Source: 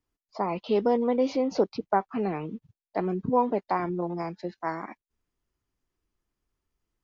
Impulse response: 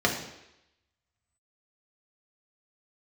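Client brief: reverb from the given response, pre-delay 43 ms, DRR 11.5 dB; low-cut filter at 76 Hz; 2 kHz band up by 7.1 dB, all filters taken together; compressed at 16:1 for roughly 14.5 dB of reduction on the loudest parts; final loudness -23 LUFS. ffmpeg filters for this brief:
-filter_complex "[0:a]highpass=76,equalizer=f=2000:t=o:g=9,acompressor=threshold=0.0282:ratio=16,asplit=2[s0][s1];[1:a]atrim=start_sample=2205,adelay=43[s2];[s1][s2]afir=irnorm=-1:irlink=0,volume=0.0531[s3];[s0][s3]amix=inputs=2:normalize=0,volume=5.01"

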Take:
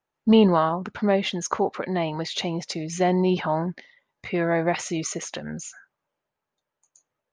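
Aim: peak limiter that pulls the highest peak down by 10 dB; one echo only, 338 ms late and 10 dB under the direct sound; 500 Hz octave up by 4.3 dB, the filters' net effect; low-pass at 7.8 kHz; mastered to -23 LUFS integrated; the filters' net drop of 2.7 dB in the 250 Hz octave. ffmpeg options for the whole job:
-af "lowpass=7800,equalizer=f=250:t=o:g=-6.5,equalizer=f=500:t=o:g=7.5,alimiter=limit=0.178:level=0:latency=1,aecho=1:1:338:0.316,volume=1.41"

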